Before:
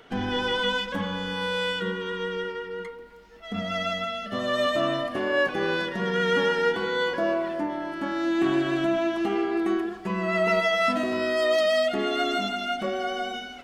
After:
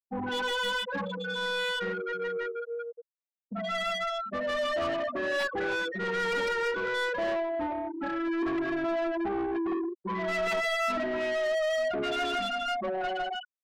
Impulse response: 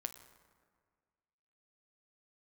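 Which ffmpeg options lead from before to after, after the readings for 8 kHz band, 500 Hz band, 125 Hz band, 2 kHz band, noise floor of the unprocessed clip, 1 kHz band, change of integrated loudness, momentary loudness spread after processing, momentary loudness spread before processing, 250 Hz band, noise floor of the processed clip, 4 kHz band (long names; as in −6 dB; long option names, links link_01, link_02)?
−1.5 dB, −4.5 dB, −9.5 dB, −3.0 dB, −42 dBFS, −3.0 dB, −4.5 dB, 6 LU, 8 LU, −6.5 dB, below −85 dBFS, −5.0 dB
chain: -filter_complex "[0:a]aeval=exprs='(mod(5.31*val(0)+1,2)-1)/5.31':channel_layout=same,afftfilt=real='re*gte(hypot(re,im),0.112)':imag='im*gte(hypot(re,im),0.112)':win_size=1024:overlap=0.75,asplit=2[link_01][link_02];[link_02]highpass=frequency=720:poles=1,volume=22dB,asoftclip=type=tanh:threshold=-14dB[link_03];[link_01][link_03]amix=inputs=2:normalize=0,lowpass=frequency=3700:poles=1,volume=-6dB,volume=-9dB"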